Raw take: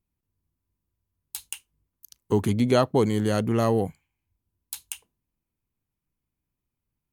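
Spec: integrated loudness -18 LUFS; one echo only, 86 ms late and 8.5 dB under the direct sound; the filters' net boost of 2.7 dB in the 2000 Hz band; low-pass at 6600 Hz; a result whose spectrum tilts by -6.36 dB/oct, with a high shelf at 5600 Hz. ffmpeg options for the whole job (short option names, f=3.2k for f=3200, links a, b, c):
-af "lowpass=6.6k,equalizer=f=2k:t=o:g=4,highshelf=f=5.6k:g=-4,aecho=1:1:86:0.376,volume=5dB"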